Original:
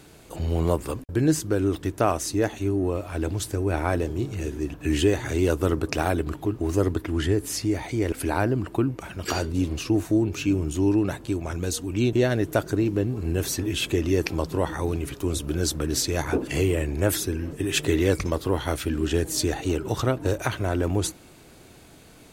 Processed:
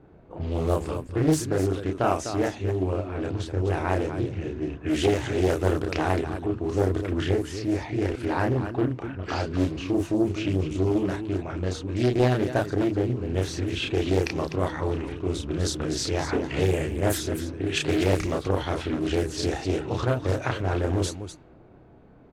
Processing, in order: level-controlled noise filter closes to 910 Hz, open at -17.5 dBFS; on a send: loudspeakers at several distances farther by 11 m -2 dB, 86 m -9 dB; on the sum: loudspeaker Doppler distortion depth 0.68 ms; trim -3 dB

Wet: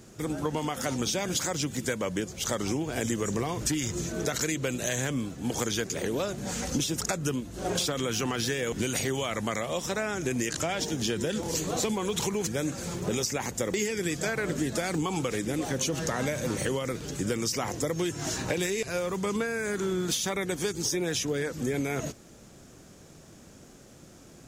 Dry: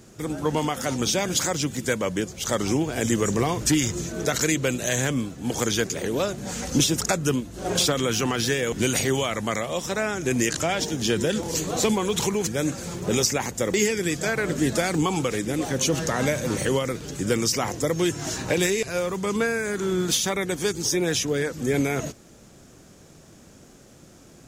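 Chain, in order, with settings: compression, threshold -24 dBFS, peak gain reduction 8 dB; trim -1.5 dB

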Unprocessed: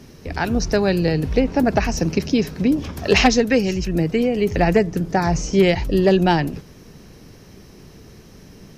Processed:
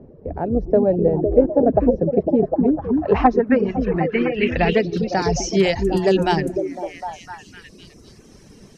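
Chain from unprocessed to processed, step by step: repeats whose band climbs or falls 253 ms, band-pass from 280 Hz, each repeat 0.7 oct, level -1 dB; reverb removal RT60 0.86 s; low-pass sweep 570 Hz -> 8.8 kHz, 2.43–5.99 s; trim -1.5 dB

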